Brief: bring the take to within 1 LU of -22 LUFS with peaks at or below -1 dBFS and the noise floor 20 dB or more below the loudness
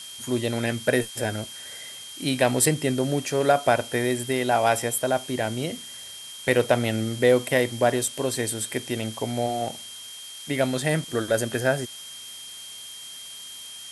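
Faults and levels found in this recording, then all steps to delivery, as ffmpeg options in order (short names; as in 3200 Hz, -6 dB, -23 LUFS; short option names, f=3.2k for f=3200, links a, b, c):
steady tone 3200 Hz; tone level -40 dBFS; noise floor -40 dBFS; noise floor target -45 dBFS; loudness -24.5 LUFS; peak -5.5 dBFS; loudness target -22.0 LUFS
-> -af "bandreject=f=3.2k:w=30"
-af "afftdn=nr=6:nf=-40"
-af "volume=2.5dB"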